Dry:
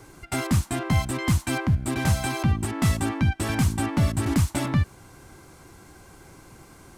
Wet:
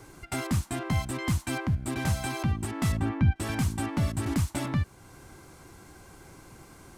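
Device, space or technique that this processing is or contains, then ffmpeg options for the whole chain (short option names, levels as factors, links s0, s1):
parallel compression: -filter_complex "[0:a]asettb=1/sr,asplit=3[s0][s1][s2];[s0]atrim=end=2.924[s3];[s1]atrim=start=2.92:end=3.36,asetpts=PTS-STARTPTS,afade=t=in:d=0.004:c=qsin,afade=t=out:st=0.436:d=0.004:c=qsin,bass=f=250:g=6,treble=f=4000:g=-14[s4];[s2]atrim=start=3.356[s5];[s3][s4]acrossfade=d=0.004:c1=hsin:c2=qsin[s6];[s6][s5]acrossfade=d=0.004:c1=qsin:c2=hsin,asplit=2[s7][s8];[s8]acompressor=threshold=0.0178:ratio=6,volume=0.75[s9];[s7][s9]amix=inputs=2:normalize=0,volume=0.473"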